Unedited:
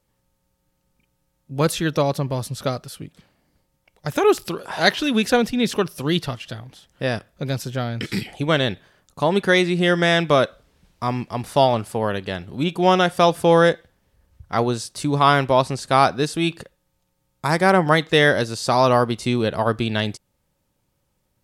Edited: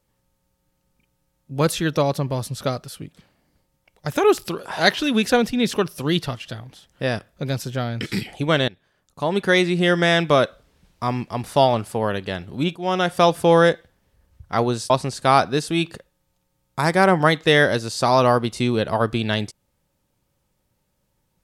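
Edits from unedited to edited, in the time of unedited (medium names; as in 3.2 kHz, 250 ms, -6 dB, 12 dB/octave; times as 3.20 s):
8.68–9.60 s: fade in linear, from -20 dB
12.76–13.16 s: fade in, from -15 dB
14.90–15.56 s: delete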